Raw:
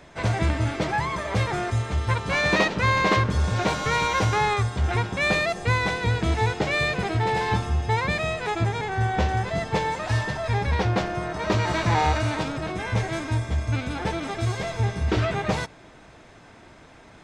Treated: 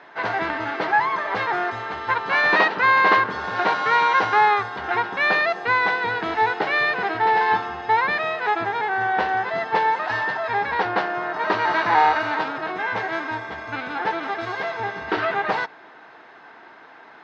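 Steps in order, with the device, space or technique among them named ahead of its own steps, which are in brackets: phone earpiece (speaker cabinet 470–3800 Hz, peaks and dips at 570 Hz -7 dB, 880 Hz +3 dB, 1600 Hz +4 dB, 2400 Hz -6 dB, 3400 Hz -6 dB); gain +6 dB

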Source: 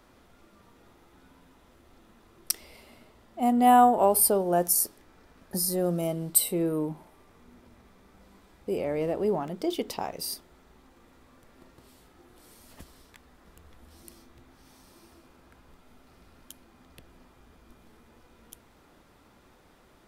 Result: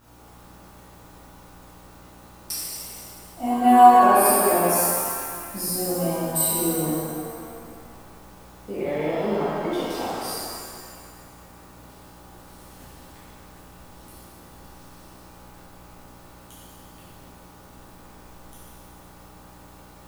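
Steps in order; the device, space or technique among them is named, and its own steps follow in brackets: 8.72–9.72 resonant high shelf 3000 Hz -12 dB, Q 3; video cassette with head-switching buzz (buzz 60 Hz, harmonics 25, -52 dBFS -3 dB/oct; white noise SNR 29 dB); shimmer reverb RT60 2 s, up +7 st, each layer -8 dB, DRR -11.5 dB; gain -8.5 dB

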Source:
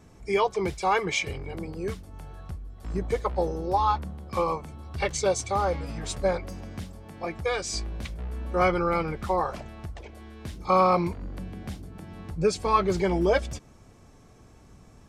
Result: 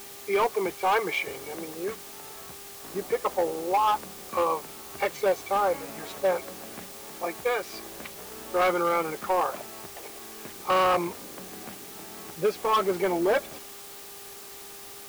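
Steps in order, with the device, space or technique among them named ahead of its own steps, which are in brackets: aircraft radio (BPF 350–2400 Hz; hard clip -21 dBFS, distortion -12 dB; buzz 400 Hz, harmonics 3, -55 dBFS -5 dB/oct; white noise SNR 15 dB); gain +2.5 dB

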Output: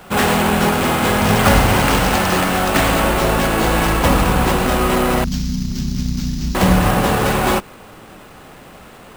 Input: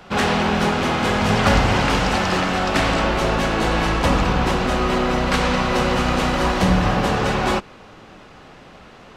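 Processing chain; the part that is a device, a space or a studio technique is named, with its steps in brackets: 5.24–6.55 elliptic band-stop 220–5300 Hz, stop band 50 dB; early companding sampler (sample-rate reducer 11000 Hz, jitter 0%; companded quantiser 6-bit); gain +3.5 dB

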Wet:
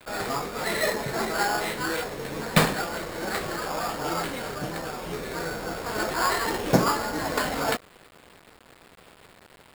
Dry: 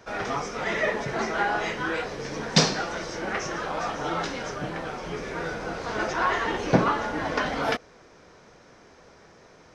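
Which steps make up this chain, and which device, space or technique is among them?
early 8-bit sampler (sample-rate reducer 6000 Hz, jitter 0%; bit-crush 8-bit)

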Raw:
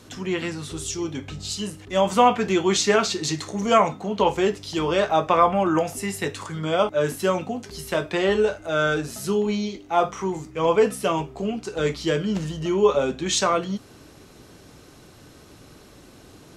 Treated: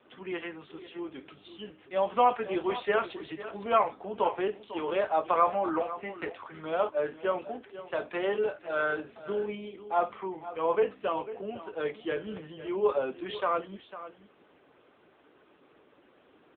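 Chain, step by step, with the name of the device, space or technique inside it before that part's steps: satellite phone (BPF 370–3100 Hz; echo 0.5 s -14 dB; gain -5.5 dB; AMR-NB 6.7 kbps 8000 Hz)

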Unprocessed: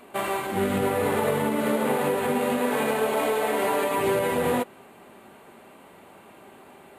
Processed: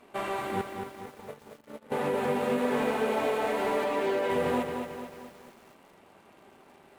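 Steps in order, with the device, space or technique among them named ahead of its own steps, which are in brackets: 0.61–1.92 gate -20 dBFS, range -30 dB; 3.84–4.3 Chebyshev band-pass 290–5600 Hz, order 2; high shelf 7900 Hz -8.5 dB; early transistor amplifier (crossover distortion -58.5 dBFS; slew limiter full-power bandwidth 88 Hz); lo-fi delay 0.223 s, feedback 55%, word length 8-bit, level -6 dB; gain -4.5 dB

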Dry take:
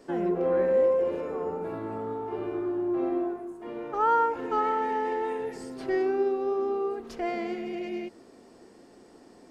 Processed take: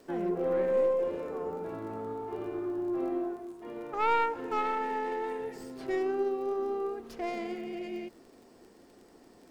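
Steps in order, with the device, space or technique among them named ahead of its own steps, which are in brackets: record under a worn stylus (tracing distortion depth 0.11 ms; crackle 29/s -42 dBFS; pink noise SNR 38 dB); gain -4 dB

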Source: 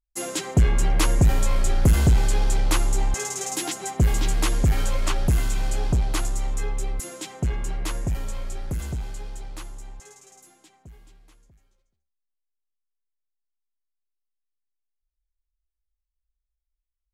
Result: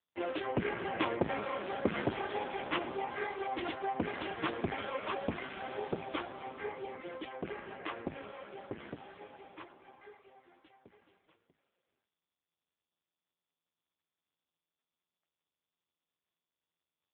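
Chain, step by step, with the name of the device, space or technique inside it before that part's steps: telephone (BPF 300–3300 Hz; AMR-NB 5.15 kbps 8000 Hz)

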